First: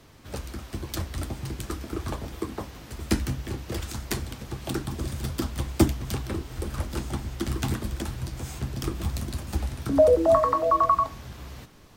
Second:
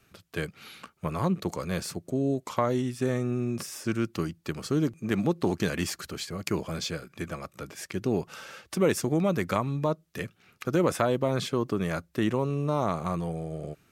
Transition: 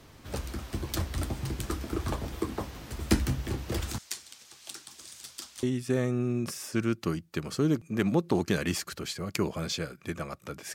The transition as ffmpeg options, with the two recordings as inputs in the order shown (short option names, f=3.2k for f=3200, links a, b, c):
-filter_complex "[0:a]asettb=1/sr,asplit=3[a][b][c];[a]atrim=end=3.984[d];[b]atrim=start=3.98:end=5.63,asetpts=PTS-STARTPTS,afade=t=in:d=0.004:c=qsin,afade=t=out:st=1.646:d=0.004:c=qsin,bandpass=f=6.6k:t=q:w=0.94:csg=0[e];[c]atrim=start=5.626[f];[d][e]acrossfade=d=0.004:c1=hsin:c2=qsin[g];[g][f]acrossfade=d=0.004:c1=qsin:c2=hsin,apad=whole_dur=10.74,atrim=end=10.74,atrim=end=5.632[h];[1:a]atrim=start=2.748:end=7.86[i];[h][i]acrossfade=d=0.004:c1=hsin:c2=hsin"